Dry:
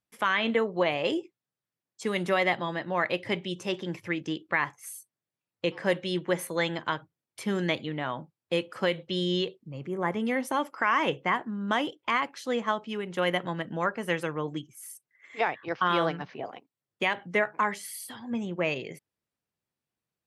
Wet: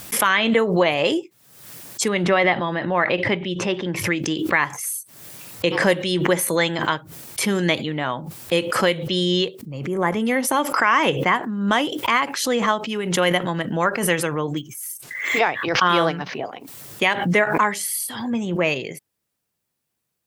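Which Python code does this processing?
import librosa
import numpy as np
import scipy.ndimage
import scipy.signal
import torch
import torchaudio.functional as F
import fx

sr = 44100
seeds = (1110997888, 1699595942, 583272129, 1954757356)

y = fx.lowpass(x, sr, hz=3000.0, slope=12, at=(2.08, 3.96))
y = fx.resample_linear(y, sr, factor=2, at=(14.57, 15.39))
y = fx.high_shelf(y, sr, hz=6300.0, db=10.0)
y = fx.pre_swell(y, sr, db_per_s=57.0)
y = y * 10.0 ** (7.0 / 20.0)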